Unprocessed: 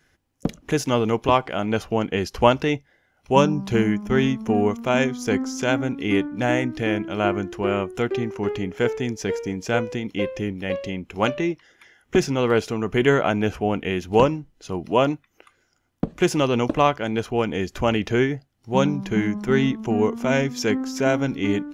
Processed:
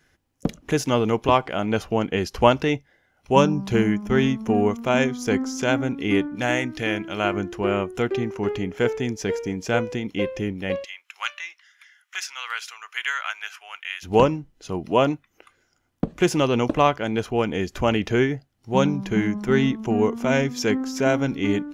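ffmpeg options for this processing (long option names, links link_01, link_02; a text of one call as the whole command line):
ffmpeg -i in.wav -filter_complex "[0:a]asettb=1/sr,asplit=3[link_01][link_02][link_03];[link_01]atrim=end=6.354[link_04];[link_02]atrim=start=6.35:end=7.34,asetpts=PTS-STARTPTS,afade=type=in:duration=0.004:curve=qsin,afade=type=out:start_time=0.986:duration=0.004:curve=qsin,tiltshelf=frequency=1200:gain=-4[link_05];[link_03]atrim=start=7.336[link_06];[link_04][link_05]acrossfade=duration=0.004:curve1=hsin:curve2=qsin[link_07];[link_07][link_06]acrossfade=duration=0.004:curve1=qsin:curve2=hsin,asplit=3[link_08][link_09][link_10];[link_08]afade=type=out:start_time=10.83:duration=0.02[link_11];[link_09]highpass=frequency=1300:width=0.5412,highpass=frequency=1300:width=1.3066,afade=type=in:start_time=10.83:duration=0.02,afade=type=out:start_time=14.02:duration=0.02[link_12];[link_10]afade=type=in:start_time=14.02:duration=0.02[link_13];[link_11][link_12][link_13]amix=inputs=3:normalize=0" out.wav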